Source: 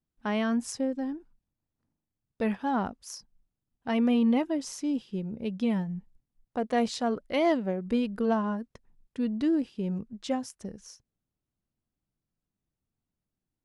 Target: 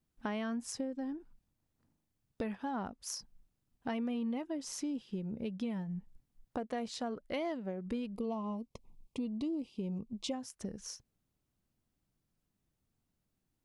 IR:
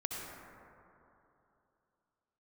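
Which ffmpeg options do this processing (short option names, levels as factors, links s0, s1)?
-filter_complex "[0:a]acompressor=threshold=0.00794:ratio=4,asplit=3[s0][s1][s2];[s0]afade=t=out:st=8.13:d=0.02[s3];[s1]asuperstop=centerf=1600:order=8:qfactor=1.7,afade=t=in:st=8.13:d=0.02,afade=t=out:st=10.32:d=0.02[s4];[s2]afade=t=in:st=10.32:d=0.02[s5];[s3][s4][s5]amix=inputs=3:normalize=0,volume=1.68"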